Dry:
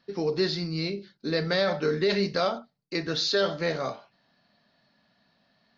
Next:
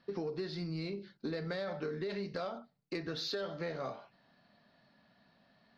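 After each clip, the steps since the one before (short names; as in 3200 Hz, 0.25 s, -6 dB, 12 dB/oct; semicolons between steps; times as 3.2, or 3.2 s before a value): LPF 2600 Hz 6 dB/oct; compressor 12:1, threshold -35 dBFS, peak gain reduction 15 dB; soft clip -27.5 dBFS, distortion -25 dB; gain +1 dB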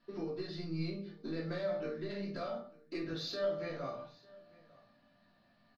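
resonator 600 Hz, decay 0.24 s, harmonics all, mix 70%; echo 0.897 s -23.5 dB; shoebox room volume 250 m³, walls furnished, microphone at 2.9 m; gain +1.5 dB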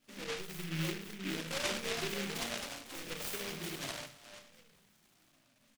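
moving spectral ripple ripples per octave 0.87, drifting -0.72 Hz, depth 23 dB; echoes that change speed 0.596 s, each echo +3 st, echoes 3, each echo -6 dB; noise-modulated delay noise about 2300 Hz, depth 0.33 ms; gain -6 dB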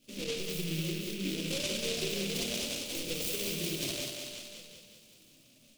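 band shelf 1200 Hz -14.5 dB; compressor, threshold -39 dBFS, peak gain reduction 8 dB; thinning echo 0.188 s, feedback 55%, high-pass 230 Hz, level -4 dB; gain +7.5 dB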